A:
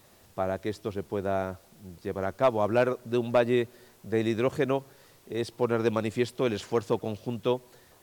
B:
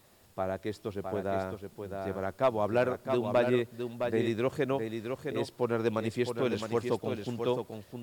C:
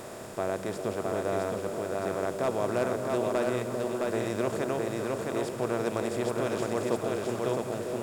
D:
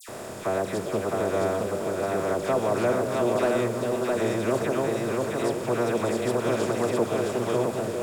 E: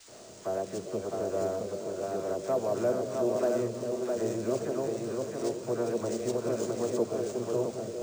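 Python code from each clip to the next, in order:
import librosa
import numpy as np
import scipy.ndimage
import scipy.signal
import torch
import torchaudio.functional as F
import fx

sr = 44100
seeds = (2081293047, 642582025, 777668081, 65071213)

y1 = fx.notch(x, sr, hz=6000.0, q=17.0)
y1 = y1 + 10.0 ** (-6.0 / 20.0) * np.pad(y1, (int(663 * sr / 1000.0), 0))[:len(y1)]
y1 = y1 * 10.0 ** (-3.5 / 20.0)
y2 = fx.bin_compress(y1, sr, power=0.4)
y2 = fx.high_shelf_res(y2, sr, hz=5300.0, db=7.0, q=1.5)
y2 = fx.echo_stepped(y2, sr, ms=200, hz=160.0, octaves=1.4, feedback_pct=70, wet_db=-1)
y2 = y2 * 10.0 ** (-6.0 / 20.0)
y3 = fx.dispersion(y2, sr, late='lows', ms=87.0, hz=2000.0)
y3 = fx.wow_flutter(y3, sr, seeds[0], rate_hz=2.1, depth_cents=29.0)
y3 = y3 * 10.0 ** (4.5 / 20.0)
y4 = fx.high_shelf_res(y3, sr, hz=5400.0, db=11.0, q=1.5)
y4 = fx.sample_hold(y4, sr, seeds[1], rate_hz=14000.0, jitter_pct=0)
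y4 = fx.spectral_expand(y4, sr, expansion=1.5)
y4 = y4 * 10.0 ** (-4.5 / 20.0)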